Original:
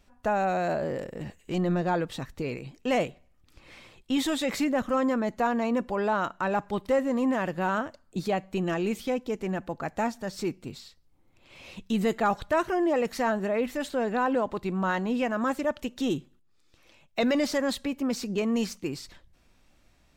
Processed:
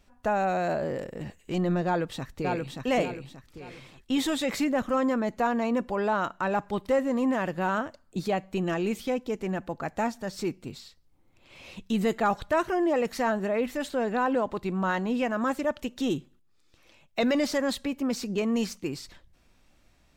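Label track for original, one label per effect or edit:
1.860000	2.790000	echo throw 580 ms, feedback 35%, level -3.5 dB

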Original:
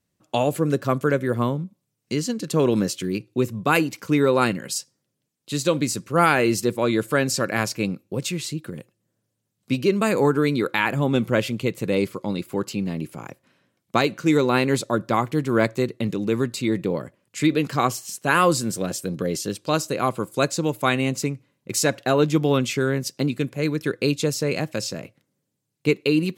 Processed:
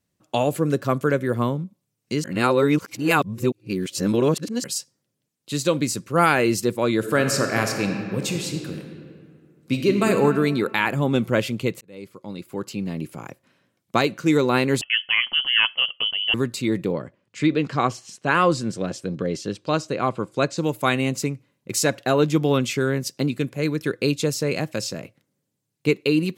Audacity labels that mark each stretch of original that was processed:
2.240000	4.640000	reverse
6.970000	10.080000	reverb throw, RT60 2.2 s, DRR 4 dB
11.810000	13.080000	fade in
14.810000	16.340000	frequency inversion carrier 3.2 kHz
16.920000	20.580000	distance through air 97 m

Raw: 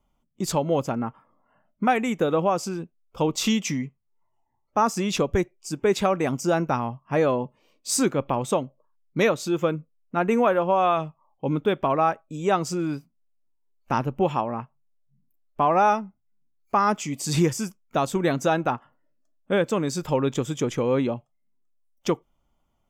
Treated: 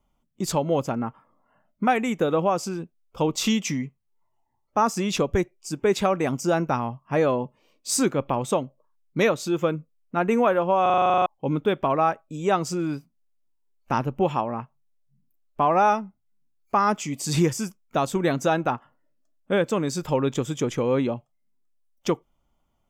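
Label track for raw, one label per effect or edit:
10.820000	10.820000	stutter in place 0.04 s, 11 plays

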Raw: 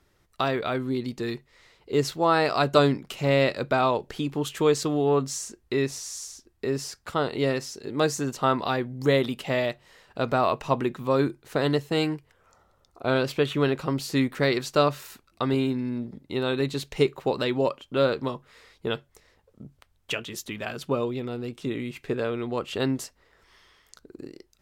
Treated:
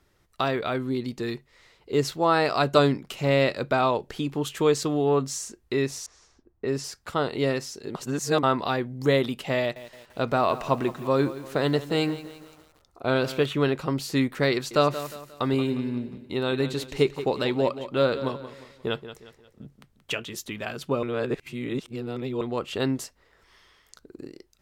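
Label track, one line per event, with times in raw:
6.060000	6.840000	level-controlled noise filter closes to 850 Hz, open at -22.5 dBFS
7.950000	8.430000	reverse
9.590000	13.460000	bit-crushed delay 170 ms, feedback 55%, word length 7-bit, level -14.5 dB
14.530000	20.150000	feedback delay 178 ms, feedback 39%, level -12.5 dB
21.030000	22.410000	reverse

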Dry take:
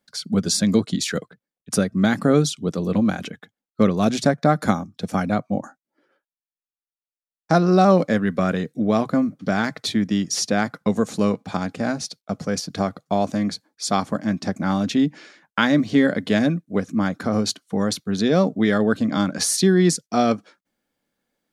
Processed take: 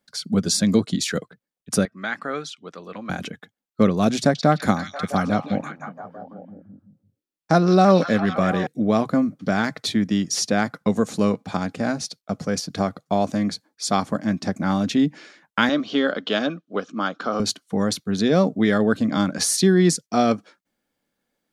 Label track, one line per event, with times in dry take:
1.850000	3.100000	band-pass filter 1.7 kHz, Q 1.1
4.180000	8.670000	repeats whose band climbs or falls 169 ms, band-pass from 4 kHz, each repeat -0.7 oct, level -1 dB
15.690000	17.400000	cabinet simulation 350–5900 Hz, peaks and dips at 1.3 kHz +8 dB, 2 kHz -8 dB, 3.1 kHz +9 dB

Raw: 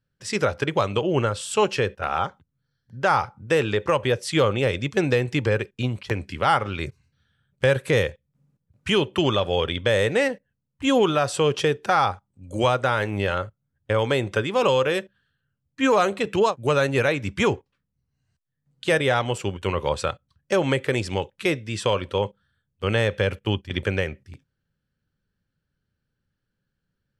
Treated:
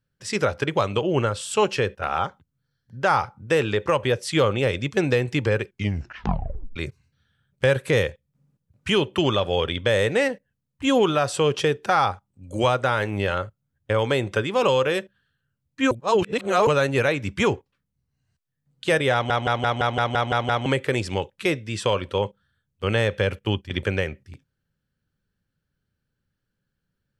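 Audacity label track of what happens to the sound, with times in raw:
5.670000	5.670000	tape stop 1.09 s
15.910000	16.670000	reverse
19.130000	19.130000	stutter in place 0.17 s, 9 plays

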